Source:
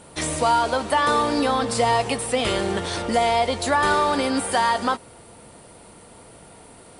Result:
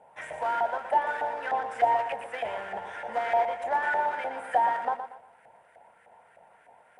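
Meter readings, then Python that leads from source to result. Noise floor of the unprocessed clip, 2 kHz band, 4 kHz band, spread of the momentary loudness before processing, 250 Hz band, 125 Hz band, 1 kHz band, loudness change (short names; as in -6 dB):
-47 dBFS, -6.5 dB, -21.0 dB, 5 LU, -24.0 dB, under -20 dB, -5.0 dB, -7.0 dB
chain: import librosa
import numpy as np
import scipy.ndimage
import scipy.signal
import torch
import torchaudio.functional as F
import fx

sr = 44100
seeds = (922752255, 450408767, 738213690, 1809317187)

p1 = fx.fixed_phaser(x, sr, hz=1200.0, stages=6)
p2 = fx.sample_hold(p1, sr, seeds[0], rate_hz=1200.0, jitter_pct=20)
p3 = p1 + (p2 * 10.0 ** (-7.5 / 20.0))
p4 = fx.filter_lfo_bandpass(p3, sr, shape='saw_up', hz=3.3, low_hz=730.0, high_hz=1700.0, q=3.3)
p5 = fx.echo_feedback(p4, sr, ms=118, feedback_pct=33, wet_db=-9.0)
y = p5 * 10.0 ** (2.0 / 20.0)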